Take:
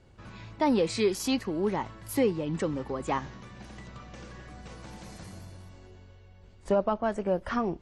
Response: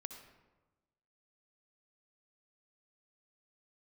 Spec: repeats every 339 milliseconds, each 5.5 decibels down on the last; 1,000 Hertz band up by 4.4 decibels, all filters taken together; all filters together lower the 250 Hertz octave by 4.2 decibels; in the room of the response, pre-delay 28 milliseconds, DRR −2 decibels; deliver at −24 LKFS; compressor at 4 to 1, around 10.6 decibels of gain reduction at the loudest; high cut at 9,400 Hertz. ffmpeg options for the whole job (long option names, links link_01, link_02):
-filter_complex "[0:a]lowpass=9400,equalizer=frequency=250:width_type=o:gain=-5.5,equalizer=frequency=1000:width_type=o:gain=5.5,acompressor=threshold=-32dB:ratio=4,aecho=1:1:339|678|1017|1356|1695|2034|2373:0.531|0.281|0.149|0.079|0.0419|0.0222|0.0118,asplit=2[link_01][link_02];[1:a]atrim=start_sample=2205,adelay=28[link_03];[link_02][link_03]afir=irnorm=-1:irlink=0,volume=6dB[link_04];[link_01][link_04]amix=inputs=2:normalize=0,volume=8.5dB"